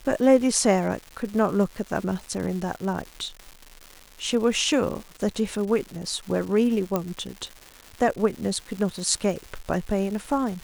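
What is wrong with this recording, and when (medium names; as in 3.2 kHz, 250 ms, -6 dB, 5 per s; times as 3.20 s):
crackle 360 per s -33 dBFS
6.96 s: pop -11 dBFS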